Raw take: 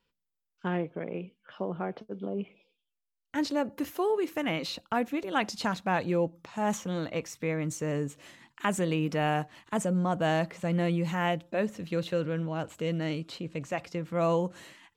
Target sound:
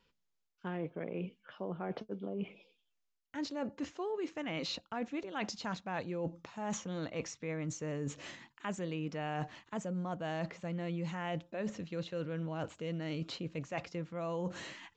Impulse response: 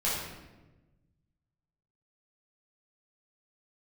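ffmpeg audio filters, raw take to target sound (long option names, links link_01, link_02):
-af "areverse,acompressor=threshold=-40dB:ratio=6,areverse,aresample=16000,aresample=44100,volume=4dB"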